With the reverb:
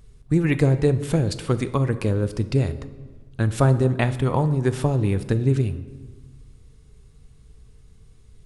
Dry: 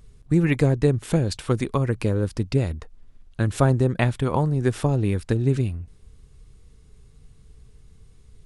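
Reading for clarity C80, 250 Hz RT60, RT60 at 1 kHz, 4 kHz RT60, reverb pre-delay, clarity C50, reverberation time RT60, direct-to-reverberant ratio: 15.5 dB, 1.7 s, 1.3 s, 0.90 s, 3 ms, 14.0 dB, 1.4 s, 11.5 dB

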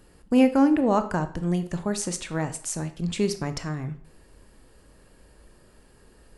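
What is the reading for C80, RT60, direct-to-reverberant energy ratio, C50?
17.0 dB, 0.55 s, 9.5 dB, 13.5 dB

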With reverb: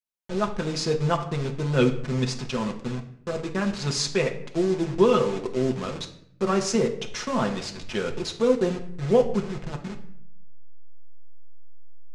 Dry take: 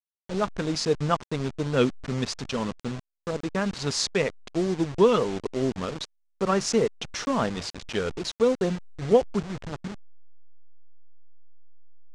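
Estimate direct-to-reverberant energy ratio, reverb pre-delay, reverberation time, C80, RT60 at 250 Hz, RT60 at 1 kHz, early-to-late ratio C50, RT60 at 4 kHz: 2.0 dB, 5 ms, 0.65 s, 14.5 dB, 0.95 s, 0.60 s, 11.0 dB, 0.50 s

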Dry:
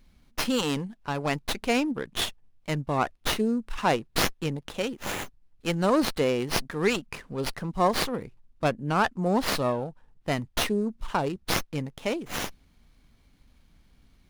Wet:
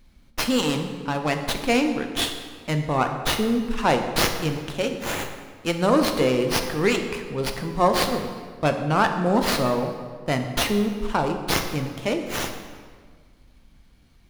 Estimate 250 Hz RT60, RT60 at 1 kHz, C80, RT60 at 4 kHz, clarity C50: 1.8 s, 1.6 s, 8.5 dB, 1.2 s, 7.0 dB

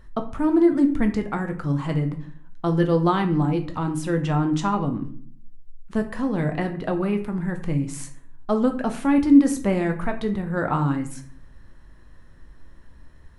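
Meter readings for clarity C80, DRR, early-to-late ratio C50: 15.0 dB, 5.0 dB, 11.5 dB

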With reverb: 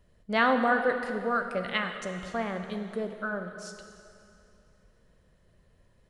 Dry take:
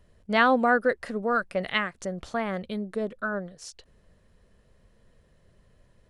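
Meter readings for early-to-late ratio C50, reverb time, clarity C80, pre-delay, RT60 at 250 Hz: 7.0 dB, 2.6 s, 7.5 dB, 6 ms, 2.7 s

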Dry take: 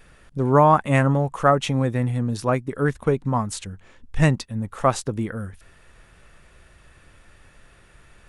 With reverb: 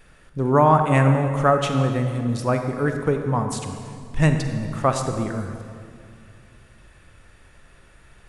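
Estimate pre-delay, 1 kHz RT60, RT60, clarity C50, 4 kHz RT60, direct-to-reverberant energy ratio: 35 ms, 2.1 s, 2.3 s, 6.0 dB, 1.8 s, 5.5 dB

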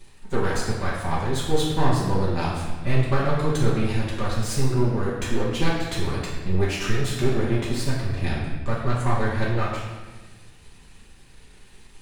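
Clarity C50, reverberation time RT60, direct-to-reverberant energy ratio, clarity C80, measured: 1.0 dB, 1.3 s, -9.0 dB, 3.5 dB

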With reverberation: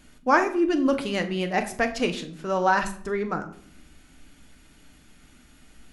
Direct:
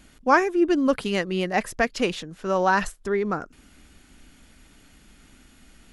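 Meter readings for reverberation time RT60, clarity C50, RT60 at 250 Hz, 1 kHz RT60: 0.60 s, 12.5 dB, 0.80 s, 0.50 s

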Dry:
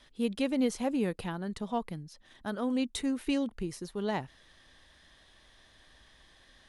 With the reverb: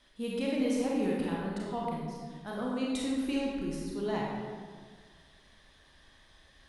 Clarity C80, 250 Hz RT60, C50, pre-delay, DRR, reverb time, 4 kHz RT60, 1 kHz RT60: 1.0 dB, 2.0 s, -1.5 dB, 30 ms, -4.0 dB, 1.7 s, 1.1 s, 1.6 s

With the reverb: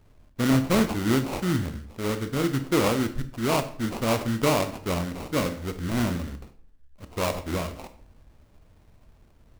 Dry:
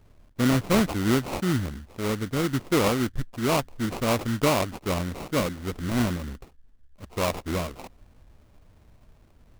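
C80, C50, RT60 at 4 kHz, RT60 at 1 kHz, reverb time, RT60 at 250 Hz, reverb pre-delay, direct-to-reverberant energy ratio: 16.5 dB, 13.0 dB, 0.40 s, 0.50 s, 0.55 s, 0.55 s, 22 ms, 9.0 dB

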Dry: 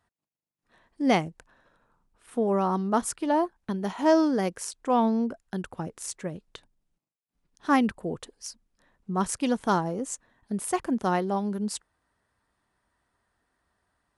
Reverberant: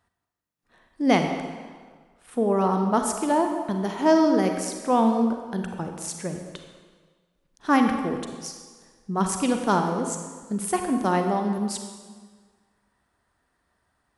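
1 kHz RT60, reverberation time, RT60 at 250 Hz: 1.6 s, 1.6 s, 1.5 s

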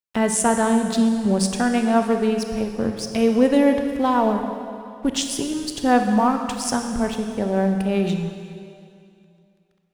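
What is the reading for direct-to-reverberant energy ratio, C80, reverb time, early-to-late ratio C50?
5.0 dB, 7.0 dB, 2.4 s, 6.0 dB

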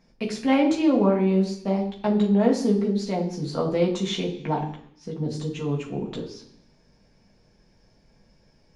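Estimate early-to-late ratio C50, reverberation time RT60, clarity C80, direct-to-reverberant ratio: 8.5 dB, 0.70 s, 11.5 dB, -2.5 dB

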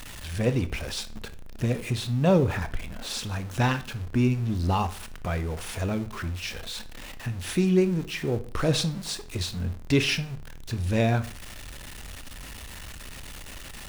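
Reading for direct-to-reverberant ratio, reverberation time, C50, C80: 12.0 dB, 0.45 s, 16.5 dB, 21.0 dB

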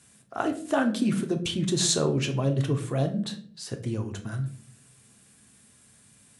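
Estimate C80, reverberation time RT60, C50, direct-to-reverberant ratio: 16.5 dB, 0.55 s, 12.0 dB, 4.5 dB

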